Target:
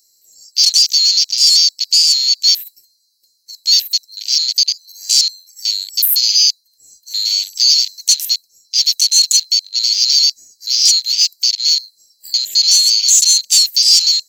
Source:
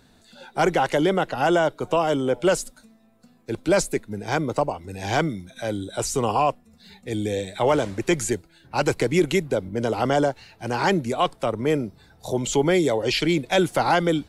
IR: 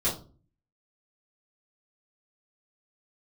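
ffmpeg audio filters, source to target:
-af "afftfilt=real='real(if(lt(b,736),b+184*(1-2*mod(floor(b/184),2)),b),0)':imag='imag(if(lt(b,736),b+184*(1-2*mod(floor(b/184),2)),b),0)':win_size=2048:overlap=0.75,aexciter=amount=13:drive=4.5:freq=5100,acontrast=65,afftfilt=real='re*(1-between(b*sr/4096,740,1600))':imag='im*(1-between(b*sr/4096,740,1600))':win_size=4096:overlap=0.75,afwtdn=0.251,volume=-4dB"

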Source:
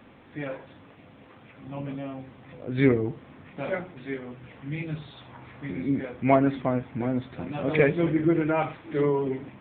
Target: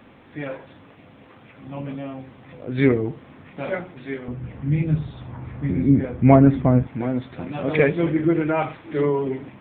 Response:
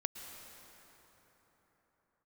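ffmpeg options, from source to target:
-filter_complex "[0:a]asettb=1/sr,asplit=3[link_01][link_02][link_03];[link_01]atrim=end=4.284[link_04];[link_02]atrim=start=4.28:end=6.87,asetpts=PTS-STARTPTS,afade=type=in:duration=0.004:curve=qsin,afade=type=out:start_time=2.586:duration=0.004:curve=qsin,aemphasis=mode=reproduction:type=riaa[link_05];[link_03]atrim=start=6.866[link_06];[link_04][link_05]acrossfade=duration=0.004:curve1=hsin:curve2=qsin[link_07];[link_07][link_06]acrossfade=duration=0.004:curve1=qsin:curve2=hsin,volume=3dB"

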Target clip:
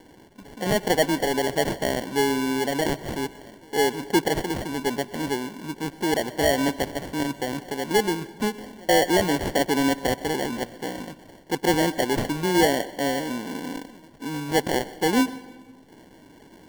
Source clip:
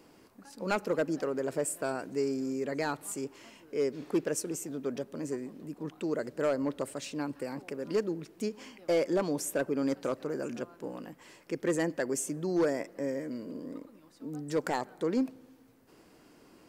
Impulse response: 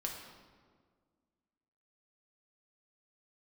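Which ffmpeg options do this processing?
-filter_complex "[0:a]equalizer=frequency=2300:width=1.7:gain=-8.5,acrusher=samples=35:mix=1:aa=0.000001,asplit=2[link_01][link_02];[1:a]atrim=start_sample=2205,adelay=126[link_03];[link_02][link_03]afir=irnorm=-1:irlink=0,volume=-18dB[link_04];[link_01][link_04]amix=inputs=2:normalize=0,volume=8.5dB"

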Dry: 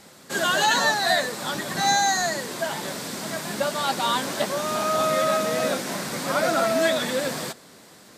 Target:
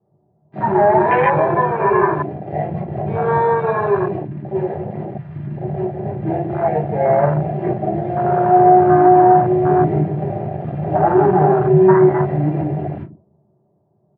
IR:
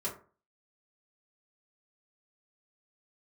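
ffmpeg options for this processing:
-filter_complex "[0:a]asplit=2[link_01][link_02];[link_02]adelay=97,lowpass=frequency=860:poles=1,volume=-7.5dB,asplit=2[link_03][link_04];[link_04]adelay=97,lowpass=frequency=860:poles=1,volume=0.41,asplit=2[link_05][link_06];[link_06]adelay=97,lowpass=frequency=860:poles=1,volume=0.41,asplit=2[link_07][link_08];[link_08]adelay=97,lowpass=frequency=860:poles=1,volume=0.41,asplit=2[link_09][link_10];[link_10]adelay=97,lowpass=frequency=860:poles=1,volume=0.41[link_11];[link_01][link_03][link_05][link_07][link_09][link_11]amix=inputs=6:normalize=0,acrossover=split=1200[link_12][link_13];[link_13]acrusher=bits=4:mix=0:aa=0.000001[link_14];[link_12][link_14]amix=inputs=2:normalize=0,asetrate=25442,aresample=44100[link_15];[1:a]atrim=start_sample=2205,atrim=end_sample=3087[link_16];[link_15][link_16]afir=irnorm=-1:irlink=0,afwtdn=0.1,highpass=110,equalizer=frequency=150:width_type=q:width=4:gain=7,equalizer=frequency=250:width_type=q:width=4:gain=-10,equalizer=frequency=440:width_type=q:width=4:gain=-7,equalizer=frequency=740:width_type=q:width=4:gain=10,equalizer=frequency=1200:width_type=q:width=4:gain=-4,equalizer=frequency=1700:width_type=q:width=4:gain=6,lowpass=frequency=2300:width=0.5412,lowpass=frequency=2300:width=1.3066,alimiter=level_in=5dB:limit=-1dB:release=50:level=0:latency=1,volume=-1dB"

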